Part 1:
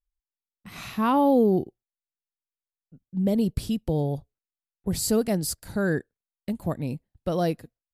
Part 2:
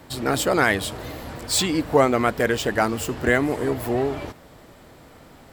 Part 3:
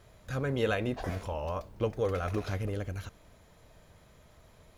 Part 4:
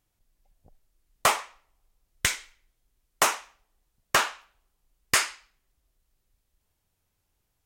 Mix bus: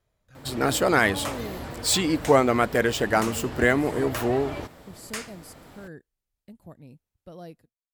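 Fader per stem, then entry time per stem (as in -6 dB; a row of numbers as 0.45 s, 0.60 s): -17.5 dB, -1.0 dB, -18.0 dB, -12.5 dB; 0.00 s, 0.35 s, 0.00 s, 0.00 s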